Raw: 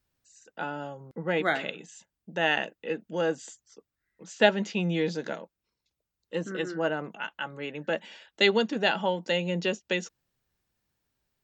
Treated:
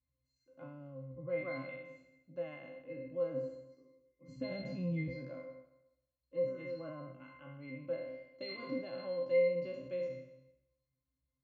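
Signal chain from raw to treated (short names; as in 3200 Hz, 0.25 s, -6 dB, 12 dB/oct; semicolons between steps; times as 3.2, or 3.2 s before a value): spectral trails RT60 0.90 s; 4.28–5.08 tone controls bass +14 dB, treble +7 dB; limiter -13.5 dBFS, peak gain reduction 10.5 dB; octave resonator C, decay 0.33 s; gain +4 dB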